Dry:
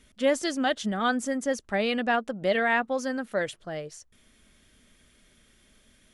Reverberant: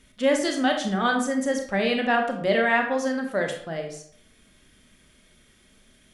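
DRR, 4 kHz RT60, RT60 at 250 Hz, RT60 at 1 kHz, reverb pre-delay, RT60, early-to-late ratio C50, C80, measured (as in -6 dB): 3.0 dB, 0.40 s, 0.65 s, 0.60 s, 26 ms, 0.65 s, 6.5 dB, 10.0 dB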